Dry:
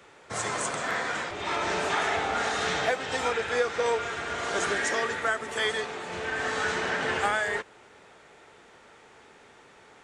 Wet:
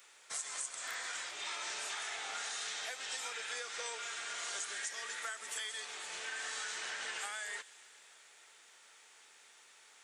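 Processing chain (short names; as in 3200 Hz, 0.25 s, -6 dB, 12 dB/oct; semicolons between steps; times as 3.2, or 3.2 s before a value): differentiator; compressor 10:1, threshold -42 dBFS, peak gain reduction 14 dB; thin delay 0.131 s, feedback 78%, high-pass 2600 Hz, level -17.5 dB; gain +4.5 dB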